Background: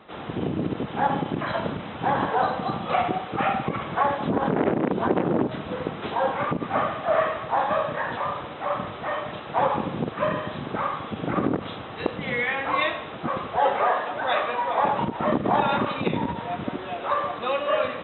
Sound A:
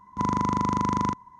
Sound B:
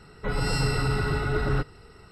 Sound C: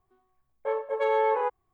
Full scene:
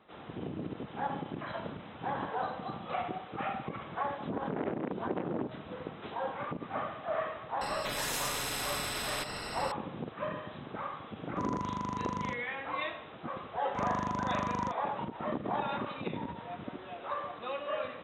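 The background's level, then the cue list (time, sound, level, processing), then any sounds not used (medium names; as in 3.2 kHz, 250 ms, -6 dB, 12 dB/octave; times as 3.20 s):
background -12 dB
7.61 s: add B -9 dB + spectrum-flattening compressor 10:1
11.20 s: add A -11 dB
13.58 s: add A -9.5 dB
not used: C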